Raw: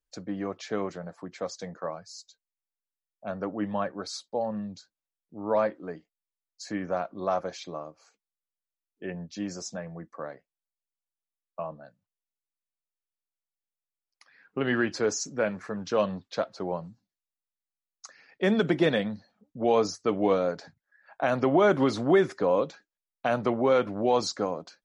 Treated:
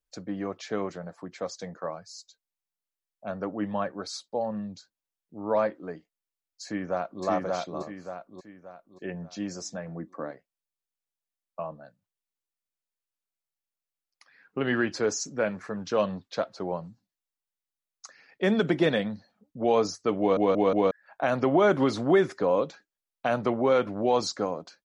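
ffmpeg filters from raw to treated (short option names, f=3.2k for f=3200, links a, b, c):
-filter_complex "[0:a]asplit=2[a][b];[b]afade=t=in:st=6.64:d=0.01,afade=t=out:st=7.24:d=0.01,aecho=0:1:580|1160|1740|2320|2900:0.891251|0.3565|0.1426|0.0570401|0.022816[c];[a][c]amix=inputs=2:normalize=0,asettb=1/sr,asplit=3[d][e][f];[d]atrim=end=9.884[g];[e]atrim=start=9.88:end=10.31,asetpts=PTS-STARTPTS,afade=t=in:d=0.004:c=qsin,afade=t=out:st=0.426:d=0.004:c=qsin,equalizer=f=270:w=1.9:g=10.5[h];[f]atrim=start=10.306[i];[g][h]acrossfade=d=0.004:c1=hsin:c2=qsin[j];[j][i]acrossfade=d=0.004:c1=qsin:c2=hsin,asplit=5[k][l][m][n][o];[k]atrim=end=20.372[p];[l]atrim=start=20.188:end=20.372[q];[m]atrim=start=20.188:end=20.372[r];[n]atrim=start=20.188:end=20.372[s];[o]atrim=start=20.908[t];[p][q]acrossfade=d=0.004:c1=hsin:c2=hsin[u];[u][r]acrossfade=d=0.004:c1=hsin:c2=hsin[v];[v][s]acrossfade=d=0.004:c1=hsin:c2=hsin[w];[w][t]acrossfade=d=0.004:c1=hsin:c2=hsin"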